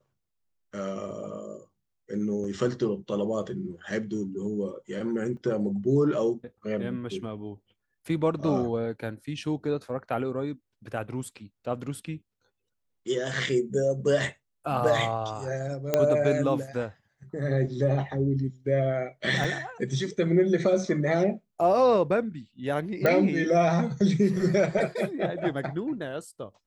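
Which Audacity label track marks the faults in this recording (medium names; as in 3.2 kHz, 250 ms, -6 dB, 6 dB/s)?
2.440000	2.440000	dropout 4.3 ms
5.370000	5.370000	dropout 2.3 ms
15.940000	15.940000	pop -9 dBFS
19.440000	19.440000	dropout 4.8 ms
23.060000	23.060000	pop -11 dBFS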